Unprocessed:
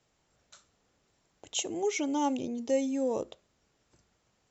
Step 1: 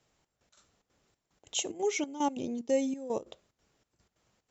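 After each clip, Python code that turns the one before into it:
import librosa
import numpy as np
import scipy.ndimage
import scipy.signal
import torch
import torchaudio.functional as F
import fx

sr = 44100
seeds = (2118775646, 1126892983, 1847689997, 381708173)

y = fx.step_gate(x, sr, bpm=184, pattern='xxx..x.xxx.', floor_db=-12.0, edge_ms=4.5)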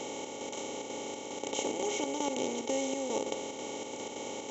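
y = fx.bin_compress(x, sr, power=0.2)
y = y * 10.0 ** (-8.5 / 20.0)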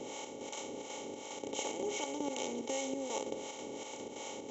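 y = fx.harmonic_tremolo(x, sr, hz=2.7, depth_pct=70, crossover_hz=570.0)
y = y * 10.0 ** (-1.0 / 20.0)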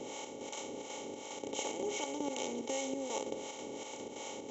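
y = x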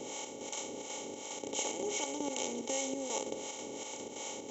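y = fx.high_shelf(x, sr, hz=5900.0, db=10.0)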